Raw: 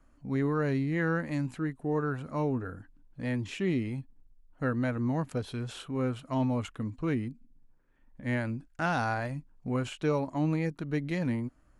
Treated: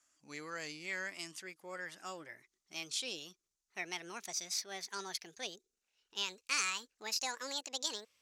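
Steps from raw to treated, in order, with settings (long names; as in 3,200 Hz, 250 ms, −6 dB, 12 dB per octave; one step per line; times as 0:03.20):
gliding playback speed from 105% → 182%
resonant band-pass 6,400 Hz, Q 2.7
level +14 dB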